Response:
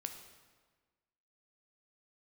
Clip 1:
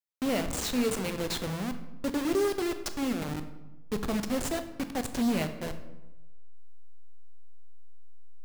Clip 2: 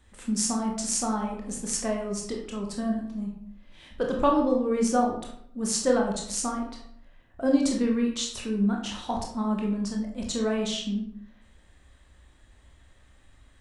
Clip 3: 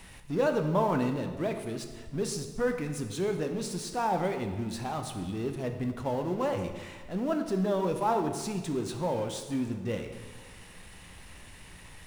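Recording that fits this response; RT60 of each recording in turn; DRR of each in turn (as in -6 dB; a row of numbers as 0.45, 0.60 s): 3; 1.0, 0.70, 1.4 s; 8.5, -0.5, 5.5 dB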